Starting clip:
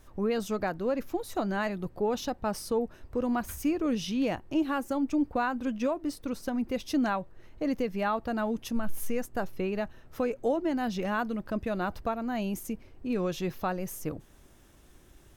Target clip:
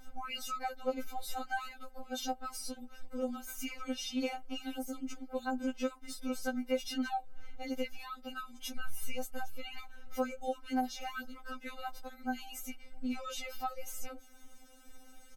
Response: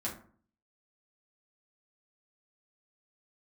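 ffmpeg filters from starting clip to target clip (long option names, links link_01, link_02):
-filter_complex "[0:a]aecho=1:1:1.4:0.63,acrossover=split=690|5200[link_01][link_02][link_03];[link_01]acompressor=threshold=-42dB:ratio=4[link_04];[link_02]acompressor=threshold=-39dB:ratio=4[link_05];[link_03]acompressor=threshold=-44dB:ratio=4[link_06];[link_04][link_05][link_06]amix=inputs=3:normalize=0,afftfilt=real='re*3.46*eq(mod(b,12),0)':imag='im*3.46*eq(mod(b,12),0)':win_size=2048:overlap=0.75,volume=2dB"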